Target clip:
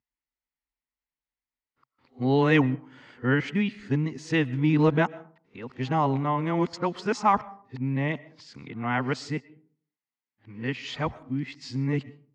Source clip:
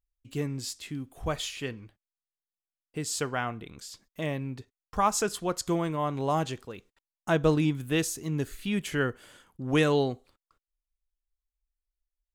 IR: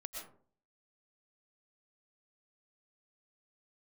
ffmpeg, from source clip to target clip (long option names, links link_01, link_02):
-filter_complex "[0:a]areverse,highpass=100,equalizer=frequency=130:width_type=q:width=4:gain=8,equalizer=frequency=250:width_type=q:width=4:gain=9,equalizer=frequency=610:width_type=q:width=4:gain=-3,equalizer=frequency=900:width_type=q:width=4:gain=7,equalizer=frequency=2000:width_type=q:width=4:gain=8,equalizer=frequency=3600:width_type=q:width=4:gain=-5,lowpass=frequency=4800:width=0.5412,lowpass=frequency=4800:width=1.3066,asplit=2[link_01][link_02];[1:a]atrim=start_sample=2205[link_03];[link_02][link_03]afir=irnorm=-1:irlink=0,volume=-14.5dB[link_04];[link_01][link_04]amix=inputs=2:normalize=0"